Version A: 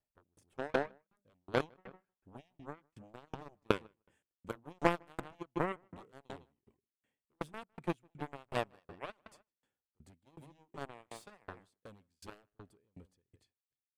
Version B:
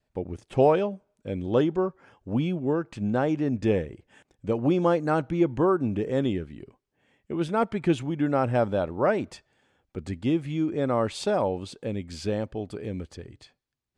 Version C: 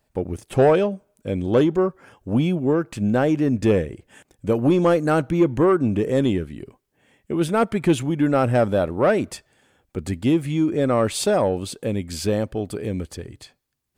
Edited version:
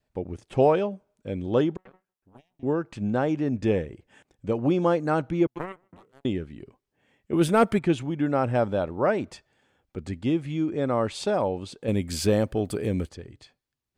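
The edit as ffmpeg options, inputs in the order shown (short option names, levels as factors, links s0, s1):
-filter_complex "[0:a]asplit=2[s0][s1];[2:a]asplit=2[s2][s3];[1:a]asplit=5[s4][s5][s6][s7][s8];[s4]atrim=end=1.772[s9];[s0]atrim=start=1.768:end=2.632[s10];[s5]atrim=start=2.628:end=5.472[s11];[s1]atrim=start=5.468:end=6.252[s12];[s6]atrim=start=6.248:end=7.332[s13];[s2]atrim=start=7.328:end=7.792[s14];[s7]atrim=start=7.788:end=11.882[s15];[s3]atrim=start=11.878:end=13.092[s16];[s8]atrim=start=13.088[s17];[s9][s10]acrossfade=d=0.004:c1=hsin:c2=hsin[s18];[s18][s11]acrossfade=d=0.004:c1=hsin:c2=hsin[s19];[s19][s12]acrossfade=d=0.004:c1=hsin:c2=hsin[s20];[s20][s13]acrossfade=d=0.004:c1=hsin:c2=hsin[s21];[s21][s14]acrossfade=d=0.004:c1=hsin:c2=hsin[s22];[s22][s15]acrossfade=d=0.004:c1=hsin:c2=hsin[s23];[s23][s16]acrossfade=d=0.004:c1=hsin:c2=hsin[s24];[s24][s17]acrossfade=d=0.004:c1=hsin:c2=hsin"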